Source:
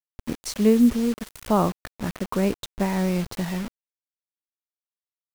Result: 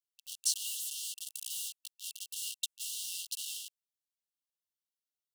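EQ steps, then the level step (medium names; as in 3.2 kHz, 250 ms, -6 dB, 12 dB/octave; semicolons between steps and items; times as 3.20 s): dynamic bell 9.1 kHz, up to +6 dB, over -52 dBFS, Q 1.2; brick-wall FIR high-pass 2.7 kHz; 0.0 dB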